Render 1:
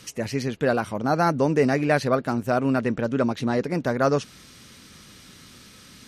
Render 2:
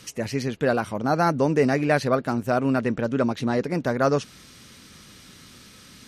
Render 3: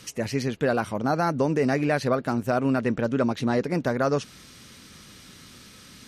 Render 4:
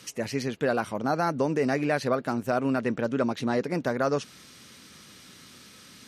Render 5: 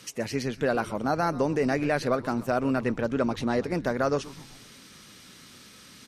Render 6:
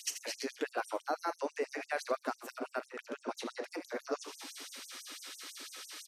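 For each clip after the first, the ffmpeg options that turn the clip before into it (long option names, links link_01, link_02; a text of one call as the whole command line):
ffmpeg -i in.wav -af anull out.wav
ffmpeg -i in.wav -af "alimiter=limit=-13dB:level=0:latency=1:release=118" out.wav
ffmpeg -i in.wav -af "highpass=frequency=160:poles=1,volume=-1.5dB" out.wav
ffmpeg -i in.wav -filter_complex "[0:a]asplit=6[link_01][link_02][link_03][link_04][link_05][link_06];[link_02]adelay=126,afreqshift=-140,volume=-17.5dB[link_07];[link_03]adelay=252,afreqshift=-280,volume=-22.5dB[link_08];[link_04]adelay=378,afreqshift=-420,volume=-27.6dB[link_09];[link_05]adelay=504,afreqshift=-560,volume=-32.6dB[link_10];[link_06]adelay=630,afreqshift=-700,volume=-37.6dB[link_11];[link_01][link_07][link_08][link_09][link_10][link_11]amix=inputs=6:normalize=0" out.wav
ffmpeg -i in.wav -af "aecho=1:1:39|79:0.2|0.266,acompressor=threshold=-36dB:ratio=3,afftfilt=real='re*gte(b*sr/1024,240*pow(6100/240,0.5+0.5*sin(2*PI*6*pts/sr)))':imag='im*gte(b*sr/1024,240*pow(6100/240,0.5+0.5*sin(2*PI*6*pts/sr)))':win_size=1024:overlap=0.75,volume=4dB" out.wav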